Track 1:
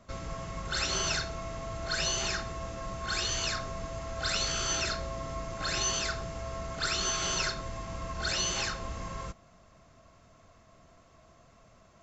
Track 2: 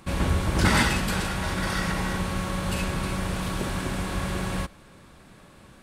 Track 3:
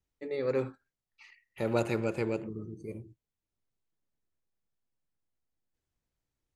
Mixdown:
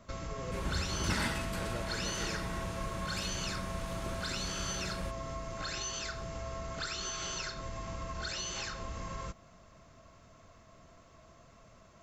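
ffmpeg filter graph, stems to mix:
-filter_complex "[0:a]acompressor=threshold=-37dB:ratio=5,volume=1dB[a];[1:a]adelay=450,volume=-12.5dB[b];[2:a]volume=-14.5dB[c];[a][b][c]amix=inputs=3:normalize=0,bandreject=f=750:w=12"

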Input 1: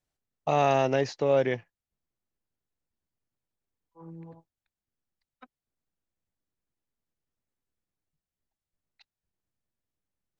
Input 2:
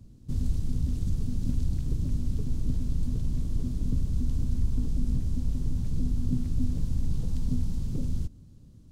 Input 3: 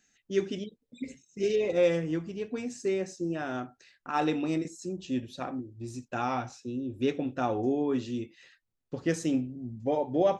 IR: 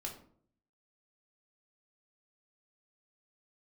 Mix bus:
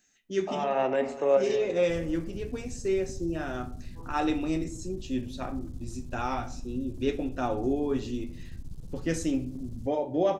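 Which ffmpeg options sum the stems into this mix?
-filter_complex "[0:a]acrossover=split=290 2800:gain=0.251 1 0.0891[a][b][c];[a][b][c]amix=inputs=3:normalize=0,volume=-2dB,asplit=3[d][e][f];[e]volume=-5dB[g];[f]volume=-15dB[h];[1:a]aeval=exprs='clip(val(0),-1,0.0355)':c=same,adelay=1600,volume=-11.5dB[i];[2:a]flanger=delay=9.6:depth=1.4:regen=-68:speed=1.4:shape=sinusoidal,volume=0.5dB,asplit=3[j][k][l];[k]volume=-3.5dB[m];[l]apad=whole_len=458448[n];[d][n]sidechaincompress=threshold=-52dB:ratio=8:attack=6.5:release=152[o];[3:a]atrim=start_sample=2205[p];[g][m]amix=inputs=2:normalize=0[q];[q][p]afir=irnorm=-1:irlink=0[r];[h]aecho=0:1:246|492|738|984|1230|1476|1722:1|0.49|0.24|0.118|0.0576|0.0282|0.0138[s];[o][i][j][r][s]amix=inputs=5:normalize=0,highshelf=f=7.9k:g=7"

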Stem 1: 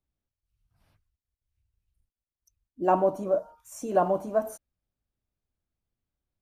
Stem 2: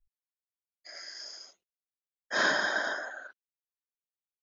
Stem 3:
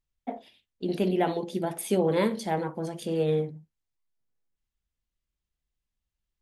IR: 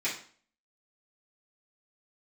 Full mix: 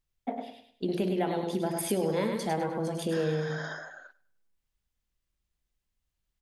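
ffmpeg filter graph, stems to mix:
-filter_complex "[1:a]alimiter=limit=-23.5dB:level=0:latency=1,adelay=800,volume=-5dB,asplit=2[a][b];[b]volume=-22dB[c];[2:a]volume=2dB,asplit=2[d][e];[e]volume=-6dB[f];[c][f]amix=inputs=2:normalize=0,aecho=0:1:102|204|306|408:1|0.31|0.0961|0.0298[g];[a][d][g]amix=inputs=3:normalize=0,acompressor=threshold=-27dB:ratio=3"

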